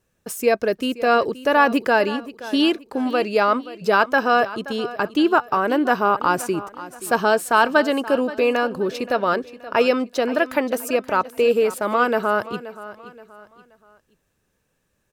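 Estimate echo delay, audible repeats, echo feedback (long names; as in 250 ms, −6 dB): 526 ms, 3, 37%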